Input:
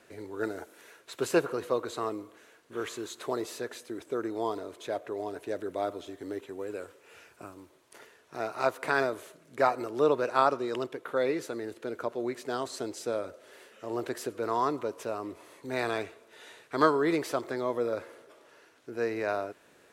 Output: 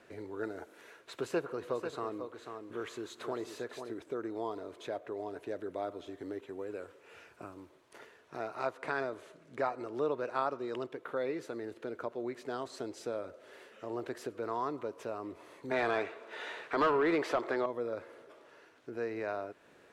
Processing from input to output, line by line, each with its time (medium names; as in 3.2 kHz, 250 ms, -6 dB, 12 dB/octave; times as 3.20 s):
1.16–3.94 s: delay 492 ms -10 dB
8.71–9.93 s: low-pass 10 kHz
15.71–17.66 s: overdrive pedal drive 21 dB, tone 2.2 kHz, clips at -8.5 dBFS
whole clip: treble shelf 5.6 kHz -11.5 dB; compression 1.5:1, threshold -43 dBFS